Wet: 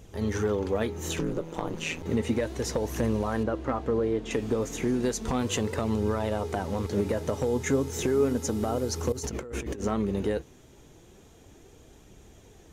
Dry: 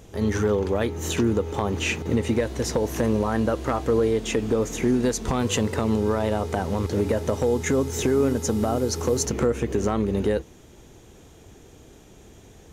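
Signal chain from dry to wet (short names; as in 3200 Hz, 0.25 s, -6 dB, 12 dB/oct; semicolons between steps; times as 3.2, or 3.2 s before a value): 3.43–4.31 LPF 1900 Hz 6 dB/oct; 9.12–9.82 negative-ratio compressor -31 dBFS, ratio -1; flange 0.33 Hz, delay 0.3 ms, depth 7.8 ms, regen +69%; 1.18–2.03 ring modulator 81 Hz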